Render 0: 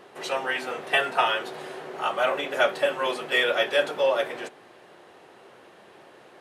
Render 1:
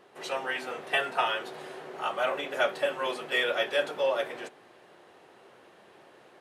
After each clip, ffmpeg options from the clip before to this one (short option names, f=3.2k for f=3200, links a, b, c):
-af "dynaudnorm=f=110:g=3:m=3.5dB,volume=-8dB"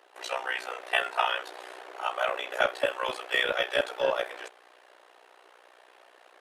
-filter_complex "[0:a]acrossover=split=450[a][b];[a]acrusher=bits=4:mix=0:aa=0.5[c];[b]tremolo=f=61:d=0.857[d];[c][d]amix=inputs=2:normalize=0,volume=5dB"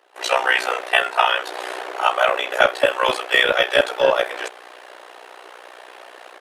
-af "dynaudnorm=f=130:g=3:m=15dB"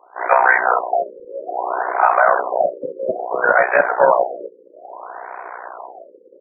-af "highpass=150,equalizer=f=180:t=q:w=4:g=9,equalizer=f=710:t=q:w=4:g=9,equalizer=f=1k:t=q:w=4:g=10,equalizer=f=1.5k:t=q:w=4:g=8,equalizer=f=2.6k:t=q:w=4:g=-4,lowpass=f=6.8k:w=0.5412,lowpass=f=6.8k:w=1.3066,alimiter=level_in=3.5dB:limit=-1dB:release=50:level=0:latency=1,afftfilt=real='re*lt(b*sr/1024,540*pow(2600/540,0.5+0.5*sin(2*PI*0.6*pts/sr)))':imag='im*lt(b*sr/1024,540*pow(2600/540,0.5+0.5*sin(2*PI*0.6*pts/sr)))':win_size=1024:overlap=0.75,volume=-1dB"